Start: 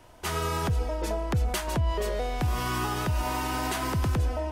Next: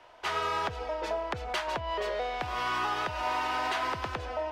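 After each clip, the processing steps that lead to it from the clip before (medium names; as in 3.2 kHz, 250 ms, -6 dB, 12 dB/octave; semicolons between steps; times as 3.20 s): three-band isolator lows -19 dB, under 460 Hz, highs -22 dB, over 4.8 kHz; in parallel at -11 dB: overload inside the chain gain 28.5 dB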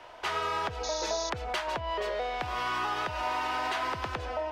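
compression 1.5:1, threshold -46 dBFS, peak gain reduction 7 dB; painted sound noise, 0.83–1.30 s, 3.4–6.8 kHz -44 dBFS; trim +6 dB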